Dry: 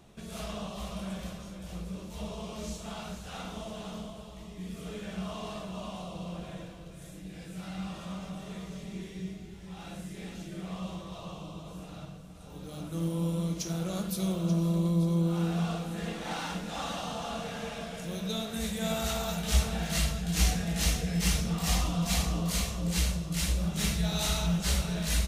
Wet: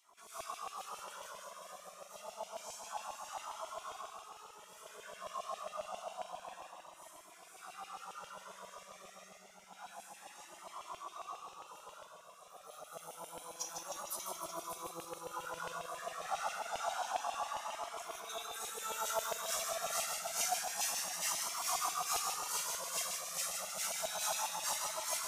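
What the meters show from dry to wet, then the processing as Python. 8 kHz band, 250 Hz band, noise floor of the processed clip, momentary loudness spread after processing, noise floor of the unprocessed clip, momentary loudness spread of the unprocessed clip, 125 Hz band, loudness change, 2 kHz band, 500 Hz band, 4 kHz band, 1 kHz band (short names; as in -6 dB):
-1.0 dB, -30.0 dB, -58 dBFS, 18 LU, -46 dBFS, 15 LU, -35.5 dB, -7.0 dB, -5.5 dB, -7.0 dB, -7.0 dB, +0.5 dB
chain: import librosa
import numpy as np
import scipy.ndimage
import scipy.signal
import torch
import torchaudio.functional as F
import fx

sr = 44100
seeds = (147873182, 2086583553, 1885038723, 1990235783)

p1 = fx.band_shelf(x, sr, hz=2700.0, db=-10.0, octaves=1.7)
p2 = p1 + fx.echo_feedback(p1, sr, ms=153, feedback_pct=60, wet_db=-5.5, dry=0)
p3 = fx.filter_lfo_highpass(p2, sr, shape='saw_down', hz=7.4, low_hz=680.0, high_hz=2900.0, q=2.5)
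p4 = p3 + 10.0 ** (-9.0 / 20.0) * np.pad(p3, (int(586 * sr / 1000.0), 0))[:len(p3)]
p5 = fx.comb_cascade(p4, sr, direction='rising', hz=0.28)
y = F.gain(torch.from_numpy(p5), 1.0).numpy()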